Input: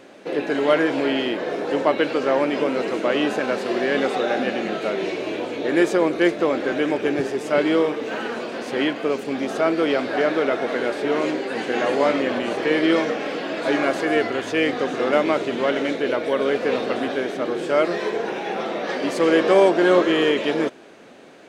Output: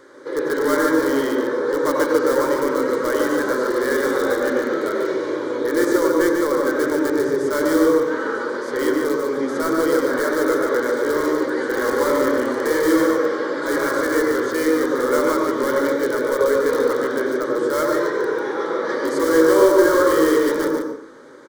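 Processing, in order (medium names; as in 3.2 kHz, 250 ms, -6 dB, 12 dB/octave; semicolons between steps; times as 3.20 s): peaking EQ 1.8 kHz +4.5 dB 2.1 oct; in parallel at -7 dB: integer overflow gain 13 dB; on the sum: static phaser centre 710 Hz, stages 6; delay 145 ms -5.5 dB; on a send at -3 dB: reverberation RT60 0.45 s, pre-delay 83 ms; on the sum: trim -3 dB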